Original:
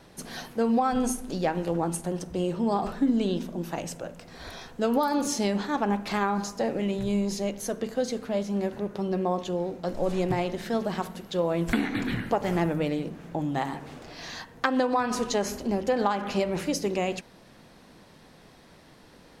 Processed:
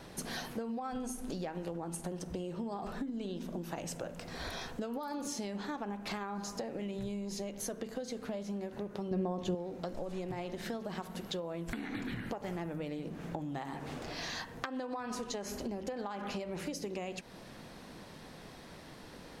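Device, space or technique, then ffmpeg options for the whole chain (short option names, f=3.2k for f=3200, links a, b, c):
serial compression, leveller first: -filter_complex "[0:a]acompressor=threshold=-29dB:ratio=2.5,acompressor=threshold=-39dB:ratio=6,asettb=1/sr,asplit=3[a][b][c];[a]atrim=end=9.114[d];[b]atrim=start=9.11:end=9.55,asetpts=PTS-STARTPTS,afade=t=in:d=0.004:c=qsin,afade=t=out:st=0.436:d=0.004:c=qsin,lowshelf=f=370:g=10[e];[c]atrim=start=9.546[f];[d][e]acrossfade=d=0.004:c1=hsin:c2=qsin[g];[g][f]acrossfade=d=0.004:c1=qsin:c2=hsin,volume=2.5dB"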